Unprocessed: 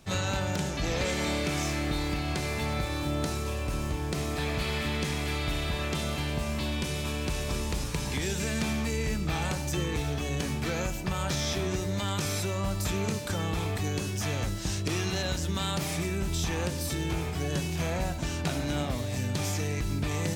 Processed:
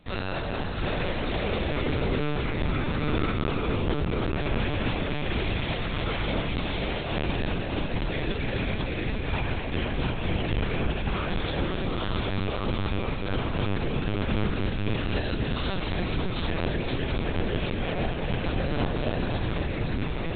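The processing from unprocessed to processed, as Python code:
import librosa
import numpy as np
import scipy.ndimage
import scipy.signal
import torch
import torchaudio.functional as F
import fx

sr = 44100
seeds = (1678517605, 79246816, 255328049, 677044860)

y = fx.rider(x, sr, range_db=10, speed_s=0.5)
y = fx.echo_heads(y, sr, ms=252, heads='all three', feedback_pct=49, wet_db=-7.0)
y = fx.lpc_vocoder(y, sr, seeds[0], excitation='pitch_kept', order=10)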